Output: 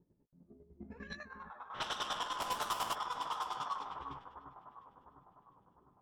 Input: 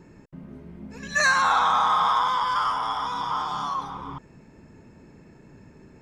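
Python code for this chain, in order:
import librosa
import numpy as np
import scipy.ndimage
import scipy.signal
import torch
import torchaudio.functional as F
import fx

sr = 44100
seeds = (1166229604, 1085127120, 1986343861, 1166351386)

y = fx.halfwave_hold(x, sr, at=(2.38, 2.93), fade=0.02)
y = fx.noise_reduce_blind(y, sr, reduce_db=12)
y = fx.over_compress(y, sr, threshold_db=-28.0, ratio=-0.5, at=(0.79, 1.73), fade=0.02)
y = 10.0 ** (-23.0 / 20.0) * (np.abs((y / 10.0 ** (-23.0 / 20.0) + 3.0) % 4.0 - 2.0) - 1.0)
y = fx.chopper(y, sr, hz=10.0, depth_pct=65, duty_pct=30)
y = fx.echo_alternate(y, sr, ms=352, hz=1900.0, feedback_pct=72, wet_db=-8.5)
y = fx.env_lowpass(y, sr, base_hz=610.0, full_db=-26.0)
y = fx.doubler(y, sr, ms=17.0, db=-12)
y = y * 10.0 ** (-7.5 / 20.0)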